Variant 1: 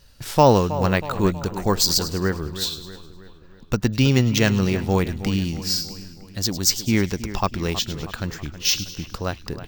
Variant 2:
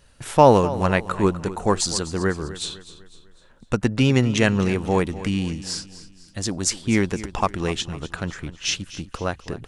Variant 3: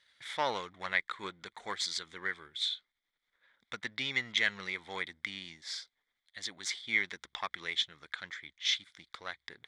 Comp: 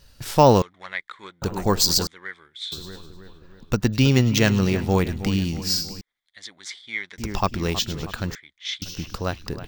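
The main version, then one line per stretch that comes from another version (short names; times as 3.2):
1
0.62–1.42 from 3
2.07–2.72 from 3
6.01–7.18 from 3
8.35–8.82 from 3
not used: 2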